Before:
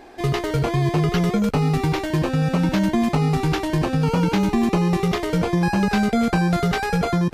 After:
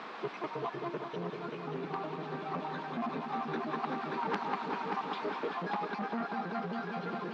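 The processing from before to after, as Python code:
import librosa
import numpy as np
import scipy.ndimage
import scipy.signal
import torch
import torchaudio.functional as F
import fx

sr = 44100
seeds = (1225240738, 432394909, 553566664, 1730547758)

p1 = fx.spec_dropout(x, sr, seeds[0], share_pct=69)
p2 = fx.peak_eq(p1, sr, hz=2200.0, db=-7.0, octaves=0.93)
p3 = p2 + fx.echo_heads(p2, sr, ms=194, heads='all three', feedback_pct=62, wet_db=-9.0, dry=0)
p4 = fx.dmg_noise_colour(p3, sr, seeds[1], colour='pink', level_db=-36.0)
p5 = fx.rider(p4, sr, range_db=3, speed_s=0.5)
p6 = fx.cabinet(p5, sr, low_hz=250.0, low_slope=24, high_hz=3300.0, hz=(330.0, 550.0, 1100.0, 2000.0, 3000.0), db=(-8, -6, 6, -5, -7))
p7 = fx.transformer_sat(p6, sr, knee_hz=1800.0)
y = p7 * 10.0 ** (-5.5 / 20.0)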